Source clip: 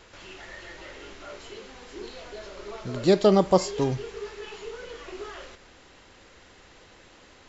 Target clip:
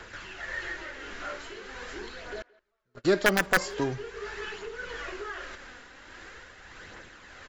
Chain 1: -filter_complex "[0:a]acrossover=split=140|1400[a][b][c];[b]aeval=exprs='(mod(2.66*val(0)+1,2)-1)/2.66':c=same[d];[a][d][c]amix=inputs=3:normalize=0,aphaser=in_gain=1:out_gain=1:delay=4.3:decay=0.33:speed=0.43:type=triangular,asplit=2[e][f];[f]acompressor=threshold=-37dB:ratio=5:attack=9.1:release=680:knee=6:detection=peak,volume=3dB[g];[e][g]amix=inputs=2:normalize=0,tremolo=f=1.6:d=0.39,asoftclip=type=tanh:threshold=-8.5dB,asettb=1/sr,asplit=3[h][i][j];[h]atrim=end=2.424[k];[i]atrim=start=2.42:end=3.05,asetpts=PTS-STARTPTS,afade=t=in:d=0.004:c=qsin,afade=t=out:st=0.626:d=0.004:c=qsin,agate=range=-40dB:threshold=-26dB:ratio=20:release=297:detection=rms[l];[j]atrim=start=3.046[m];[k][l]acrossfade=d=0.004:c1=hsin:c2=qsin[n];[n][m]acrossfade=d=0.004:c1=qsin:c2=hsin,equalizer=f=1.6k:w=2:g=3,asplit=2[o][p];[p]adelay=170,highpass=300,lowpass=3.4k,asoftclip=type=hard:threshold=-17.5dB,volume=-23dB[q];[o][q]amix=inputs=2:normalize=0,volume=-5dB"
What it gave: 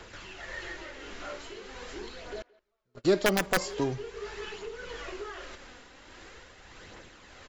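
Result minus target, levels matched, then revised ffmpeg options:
2000 Hz band -4.0 dB
-filter_complex "[0:a]acrossover=split=140|1400[a][b][c];[b]aeval=exprs='(mod(2.66*val(0)+1,2)-1)/2.66':c=same[d];[a][d][c]amix=inputs=3:normalize=0,aphaser=in_gain=1:out_gain=1:delay=4.3:decay=0.33:speed=0.43:type=triangular,asplit=2[e][f];[f]acompressor=threshold=-37dB:ratio=5:attack=9.1:release=680:knee=6:detection=peak,volume=3dB[g];[e][g]amix=inputs=2:normalize=0,tremolo=f=1.6:d=0.39,asoftclip=type=tanh:threshold=-8.5dB,asettb=1/sr,asplit=3[h][i][j];[h]atrim=end=2.424[k];[i]atrim=start=2.42:end=3.05,asetpts=PTS-STARTPTS,afade=t=in:d=0.004:c=qsin,afade=t=out:st=0.626:d=0.004:c=qsin,agate=range=-40dB:threshold=-26dB:ratio=20:release=297:detection=rms[l];[j]atrim=start=3.046[m];[k][l]acrossfade=d=0.004:c1=hsin:c2=qsin[n];[n][m]acrossfade=d=0.004:c1=qsin:c2=hsin,equalizer=f=1.6k:w=2:g=10.5,asplit=2[o][p];[p]adelay=170,highpass=300,lowpass=3.4k,asoftclip=type=hard:threshold=-17.5dB,volume=-23dB[q];[o][q]amix=inputs=2:normalize=0,volume=-5dB"

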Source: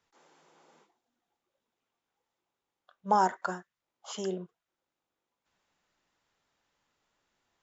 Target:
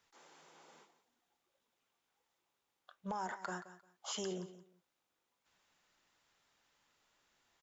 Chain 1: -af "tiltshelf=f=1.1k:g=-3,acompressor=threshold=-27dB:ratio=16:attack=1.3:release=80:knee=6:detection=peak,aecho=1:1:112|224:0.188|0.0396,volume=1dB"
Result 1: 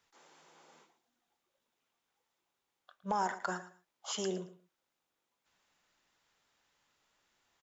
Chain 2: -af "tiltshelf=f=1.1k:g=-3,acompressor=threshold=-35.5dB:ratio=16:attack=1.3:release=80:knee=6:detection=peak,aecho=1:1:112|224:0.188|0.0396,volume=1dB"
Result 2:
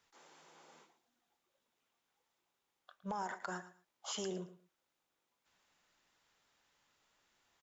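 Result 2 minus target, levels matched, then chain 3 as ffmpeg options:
echo 63 ms early
-af "tiltshelf=f=1.1k:g=-3,acompressor=threshold=-35.5dB:ratio=16:attack=1.3:release=80:knee=6:detection=peak,aecho=1:1:175|350:0.188|0.0396,volume=1dB"

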